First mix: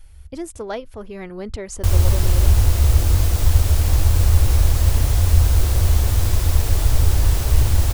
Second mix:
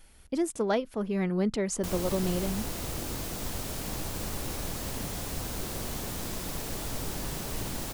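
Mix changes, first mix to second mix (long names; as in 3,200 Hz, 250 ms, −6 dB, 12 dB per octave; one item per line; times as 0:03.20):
background −8.5 dB
master: add low shelf with overshoot 120 Hz −13 dB, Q 3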